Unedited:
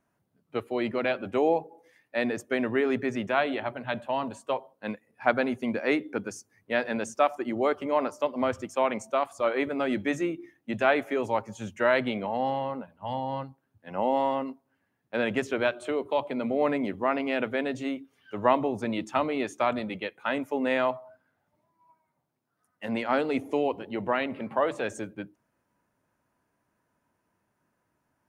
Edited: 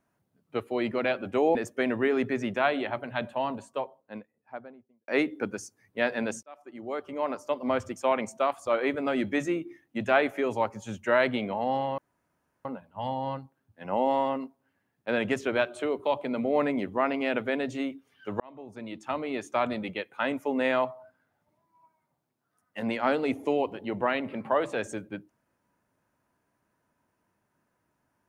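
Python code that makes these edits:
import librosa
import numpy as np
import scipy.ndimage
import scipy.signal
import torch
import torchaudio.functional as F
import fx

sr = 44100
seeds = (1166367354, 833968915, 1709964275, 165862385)

y = fx.studio_fade_out(x, sr, start_s=3.89, length_s=1.92)
y = fx.edit(y, sr, fx.cut(start_s=1.55, length_s=0.73),
    fx.fade_in_span(start_s=7.16, length_s=1.34),
    fx.insert_room_tone(at_s=12.71, length_s=0.67),
    fx.fade_in_span(start_s=18.46, length_s=1.35), tone=tone)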